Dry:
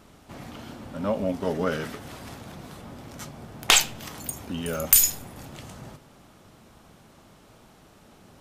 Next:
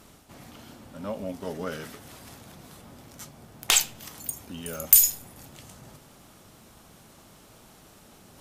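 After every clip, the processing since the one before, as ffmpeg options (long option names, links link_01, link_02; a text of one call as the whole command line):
ffmpeg -i in.wav -af "aemphasis=mode=production:type=cd,areverse,acompressor=mode=upward:threshold=-37dB:ratio=2.5,areverse,volume=-7dB" out.wav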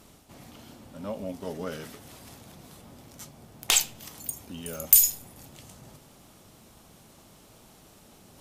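ffmpeg -i in.wav -af "equalizer=frequency=1500:width=1.5:gain=-3.5,volume=-1dB" out.wav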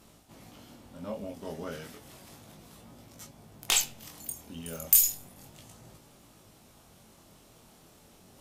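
ffmpeg -i in.wav -af "flanger=delay=17.5:depth=7.2:speed=0.33" out.wav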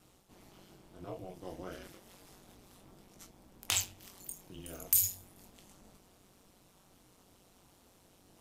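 ffmpeg -i in.wav -af "aeval=exprs='val(0)*sin(2*PI*93*n/s)':channel_layout=same,volume=-3.5dB" out.wav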